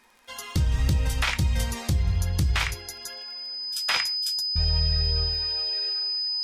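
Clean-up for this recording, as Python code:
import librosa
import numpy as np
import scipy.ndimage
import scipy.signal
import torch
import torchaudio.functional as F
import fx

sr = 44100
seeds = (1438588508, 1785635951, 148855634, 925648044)

y = fx.fix_declick_ar(x, sr, threshold=6.5)
y = fx.notch(y, sr, hz=5000.0, q=30.0)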